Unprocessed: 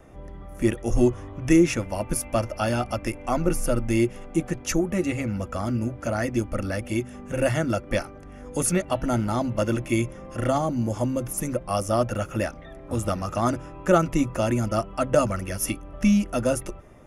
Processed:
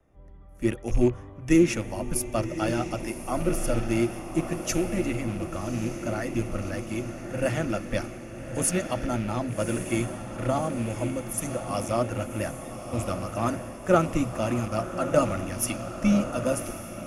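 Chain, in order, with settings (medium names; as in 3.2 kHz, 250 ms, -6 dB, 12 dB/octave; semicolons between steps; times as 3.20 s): rattle on loud lows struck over -25 dBFS, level -29 dBFS; vibrato 15 Hz 26 cents; echo that smears into a reverb 1138 ms, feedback 66%, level -7 dB; three bands expanded up and down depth 40%; trim -4 dB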